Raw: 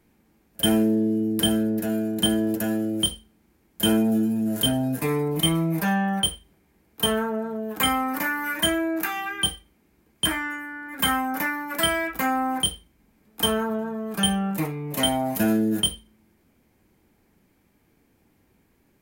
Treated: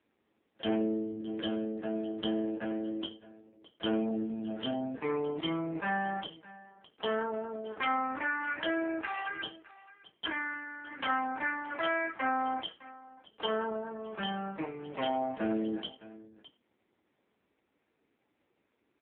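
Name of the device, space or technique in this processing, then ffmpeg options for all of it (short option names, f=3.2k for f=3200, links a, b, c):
satellite phone: -af "highpass=330,lowpass=3.3k,aecho=1:1:612:0.119,volume=-4.5dB" -ar 8000 -c:a libopencore_amrnb -b:a 5900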